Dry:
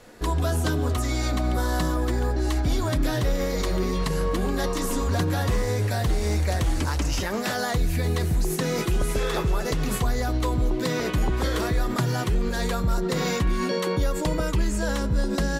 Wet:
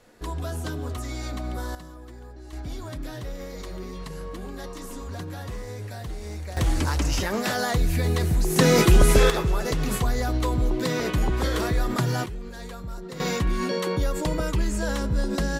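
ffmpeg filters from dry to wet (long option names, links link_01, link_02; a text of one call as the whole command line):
ffmpeg -i in.wav -af "asetnsamples=nb_out_samples=441:pad=0,asendcmd='1.75 volume volume -18.5dB;2.53 volume volume -11dB;6.57 volume volume 1dB;8.56 volume volume 8.5dB;9.3 volume volume 0dB;12.26 volume volume -12dB;13.2 volume volume -1dB',volume=-7dB" out.wav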